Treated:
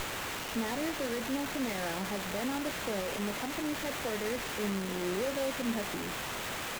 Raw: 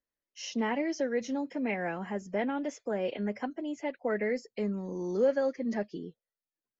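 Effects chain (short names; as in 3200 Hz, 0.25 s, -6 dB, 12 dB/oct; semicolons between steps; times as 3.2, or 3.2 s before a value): limiter -27.5 dBFS, peak gain reduction 10.5 dB; requantised 6-bit, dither triangular; doubler 26 ms -14 dB; running maximum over 9 samples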